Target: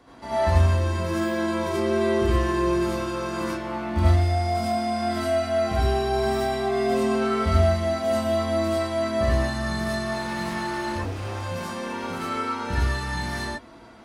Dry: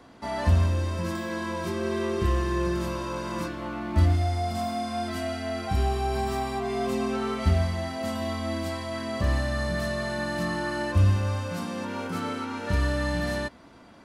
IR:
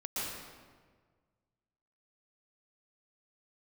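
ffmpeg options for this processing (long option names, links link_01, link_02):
-filter_complex "[0:a]asettb=1/sr,asplit=3[link_01][link_02][link_03];[link_01]atrim=end=10.064[link_04];[link_02]atrim=start=10.06:end=12.29,asetpts=PTS-STARTPTS,afade=type=in:duration=0.004:curve=qsin,afade=type=out:start_time=2.226:duration=0.004:curve=qsin,asoftclip=type=hard:threshold=-27.5dB[link_05];[link_03]atrim=start=12.286[link_06];[link_04][link_05]acrossfade=duration=0.004:curve1=hsin:curve2=qsin[link_07];[link_07][link_06]acrossfade=duration=0.004:curve1=qsin:curve2=hsin[link_08];[1:a]atrim=start_sample=2205,afade=type=out:start_time=0.23:duration=0.01,atrim=end_sample=10584,asetrate=74970,aresample=44100[link_09];[link_08][link_09]afir=irnorm=-1:irlink=0,volume=6.5dB"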